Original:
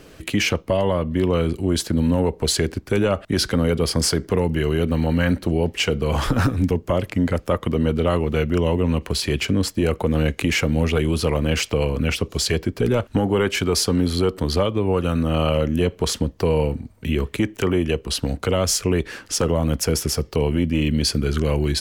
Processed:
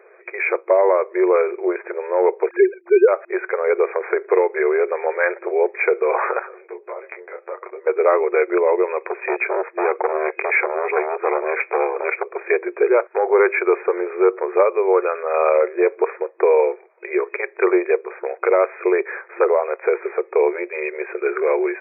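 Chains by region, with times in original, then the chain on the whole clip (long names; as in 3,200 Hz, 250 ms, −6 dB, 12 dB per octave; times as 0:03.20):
0:02.49–0:03.08: three sine waves on the formant tracks + spectral tilt −2 dB per octave
0:06.39–0:07.87: downward compressor 16 to 1, threshold −26 dBFS + micro pitch shift up and down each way 14 cents
0:09.05–0:12.48: high-pass filter 110 Hz 24 dB per octave + saturating transformer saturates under 800 Hz
whole clip: brick-wall band-pass 350–2,500 Hz; automatic gain control gain up to 7 dB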